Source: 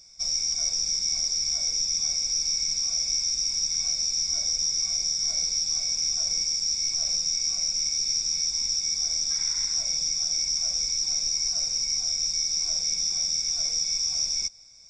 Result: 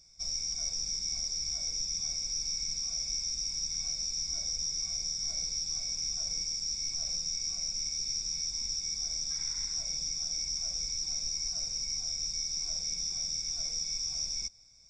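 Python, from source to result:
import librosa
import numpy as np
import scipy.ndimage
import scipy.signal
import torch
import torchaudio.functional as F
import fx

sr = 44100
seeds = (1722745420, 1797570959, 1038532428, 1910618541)

y = fx.low_shelf(x, sr, hz=240.0, db=9.0)
y = y * 10.0 ** (-8.0 / 20.0)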